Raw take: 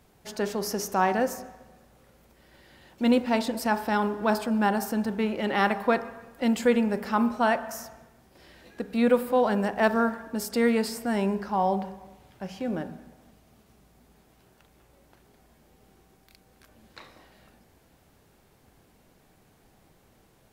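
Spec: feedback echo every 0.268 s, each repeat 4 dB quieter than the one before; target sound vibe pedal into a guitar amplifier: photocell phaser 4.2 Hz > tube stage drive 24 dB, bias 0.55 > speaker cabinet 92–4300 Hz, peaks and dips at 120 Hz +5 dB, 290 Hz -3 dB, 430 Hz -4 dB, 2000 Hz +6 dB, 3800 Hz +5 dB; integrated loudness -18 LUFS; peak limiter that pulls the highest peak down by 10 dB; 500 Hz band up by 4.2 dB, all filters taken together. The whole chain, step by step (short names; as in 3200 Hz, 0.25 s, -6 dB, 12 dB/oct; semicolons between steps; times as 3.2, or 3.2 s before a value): bell 500 Hz +7 dB; limiter -14.5 dBFS; feedback echo 0.268 s, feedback 63%, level -4 dB; photocell phaser 4.2 Hz; tube stage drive 24 dB, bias 0.55; speaker cabinet 92–4300 Hz, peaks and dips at 120 Hz +5 dB, 290 Hz -3 dB, 430 Hz -4 dB, 2000 Hz +6 dB, 3800 Hz +5 dB; gain +14.5 dB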